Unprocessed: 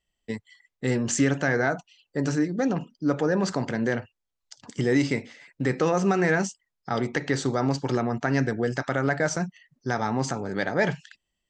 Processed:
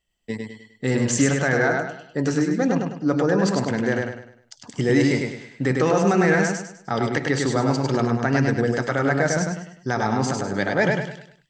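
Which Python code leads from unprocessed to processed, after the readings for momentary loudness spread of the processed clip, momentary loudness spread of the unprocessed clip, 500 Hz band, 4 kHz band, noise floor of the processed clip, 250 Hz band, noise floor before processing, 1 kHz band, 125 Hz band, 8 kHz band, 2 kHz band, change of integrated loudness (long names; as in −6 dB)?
12 LU, 11 LU, +4.5 dB, +4.5 dB, −58 dBFS, +4.0 dB, −82 dBFS, +4.5 dB, +4.5 dB, +4.5 dB, +4.5 dB, +4.0 dB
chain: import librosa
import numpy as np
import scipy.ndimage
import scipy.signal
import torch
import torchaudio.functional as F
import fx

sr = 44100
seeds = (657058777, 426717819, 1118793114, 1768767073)

y = fx.echo_feedback(x, sr, ms=101, feedback_pct=37, wet_db=-3.5)
y = F.gain(torch.from_numpy(y), 2.5).numpy()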